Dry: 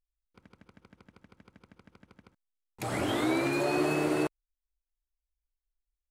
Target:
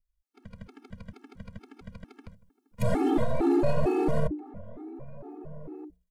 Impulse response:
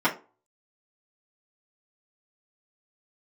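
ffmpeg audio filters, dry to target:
-filter_complex "[0:a]aeval=exprs='if(lt(val(0),0),0.447*val(0),val(0))':channel_layout=same,lowshelf=frequency=210:gain=11,bandreject=frequency=60:width_type=h:width=6,bandreject=frequency=120:width_type=h:width=6,bandreject=frequency=180:width_type=h:width=6,bandreject=frequency=240:width_type=h:width=6,bandreject=frequency=300:width_type=h:width=6,bandreject=frequency=360:width_type=h:width=6,acrossover=split=560|1100[link_01][link_02][link_03];[link_03]acompressor=threshold=-51dB:ratio=12[link_04];[link_01][link_02][link_04]amix=inputs=3:normalize=0,alimiter=level_in=0.5dB:limit=-24dB:level=0:latency=1:release=12,volume=-0.5dB,dynaudnorm=framelen=170:gausssize=5:maxgain=11.5dB,asplit=2[link_05][link_06];[link_06]adelay=1574,volume=-18dB,highshelf=frequency=4000:gain=-35.4[link_07];[link_05][link_07]amix=inputs=2:normalize=0,asplit=2[link_08][link_09];[1:a]atrim=start_sample=2205[link_10];[link_09][link_10]afir=irnorm=-1:irlink=0,volume=-32.5dB[link_11];[link_08][link_11]amix=inputs=2:normalize=0,afftfilt=real='re*gt(sin(2*PI*2.2*pts/sr)*(1-2*mod(floor(b*sr/1024/230),2)),0)':imag='im*gt(sin(2*PI*2.2*pts/sr)*(1-2*mod(floor(b*sr/1024/230),2)),0)':win_size=1024:overlap=0.75"

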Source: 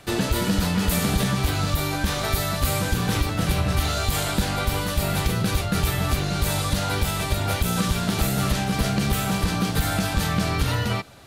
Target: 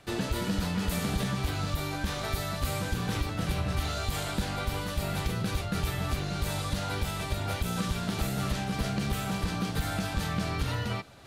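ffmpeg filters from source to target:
ffmpeg -i in.wav -af "highshelf=frequency=8800:gain=-6.5,areverse,acompressor=mode=upward:threshold=-39dB:ratio=2.5,areverse,volume=-7.5dB" out.wav

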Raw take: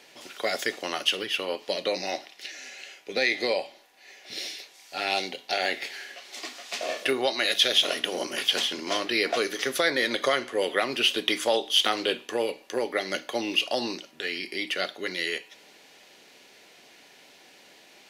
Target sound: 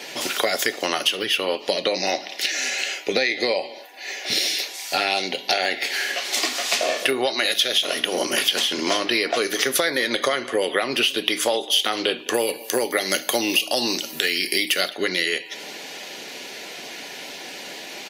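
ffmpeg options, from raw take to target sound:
ffmpeg -i in.wav -filter_complex "[0:a]asettb=1/sr,asplit=3[link_01][link_02][link_03];[link_01]atrim=end=12.344[link_04];[link_02]atrim=start=12.34:end=14.89,asetpts=PTS-STARTPTS,afade=type=in:duration=0.004:curve=qsin,afade=type=out:start_time=2.546:duration=0.004:curve=qsin,aemphasis=mode=production:type=50kf[link_05];[link_03]atrim=start=14.886[link_06];[link_04][link_05]acrossfade=duration=0.004:curve1=hsin:curve2=qsin[link_07];[link_07][link_06]acrossfade=duration=0.004:curve1=qsin:curve2=hsin,acompressor=threshold=-38dB:ratio=5,highshelf=frequency=10000:gain=9.5,aecho=1:1:210:0.0891,afftdn=noise_reduction=15:noise_floor=-63,alimiter=level_in=18.5dB:limit=-1dB:release=50:level=0:latency=1,volume=-1dB" out.wav

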